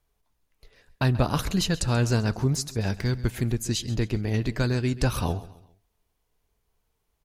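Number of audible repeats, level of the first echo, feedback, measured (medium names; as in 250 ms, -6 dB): 3, -17.5 dB, 39%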